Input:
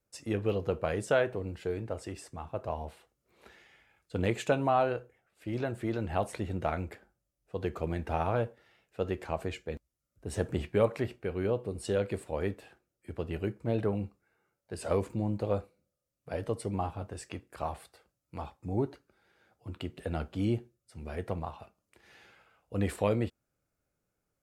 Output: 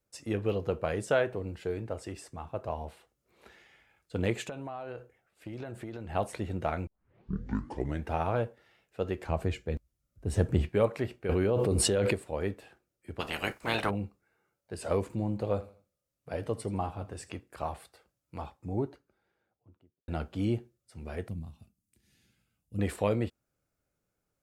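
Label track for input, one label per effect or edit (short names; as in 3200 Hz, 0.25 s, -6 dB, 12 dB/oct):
4.470000	6.150000	compressor 16:1, threshold -35 dBFS
6.870000	6.870000	tape start 1.19 s
9.260000	10.690000	low shelf 200 Hz +10.5 dB
11.290000	12.140000	fast leveller amount 100%
13.190000	13.890000	spectral limiter ceiling under each frame's peak by 29 dB
15.030000	17.310000	feedback echo 82 ms, feedback 33%, level -18 dB
18.400000	20.080000	studio fade out
21.280000	22.790000	EQ curve 240 Hz 0 dB, 430 Hz -18 dB, 890 Hz -25 dB, 1400 Hz -21 dB, 4200 Hz -8 dB, 9500 Hz +1 dB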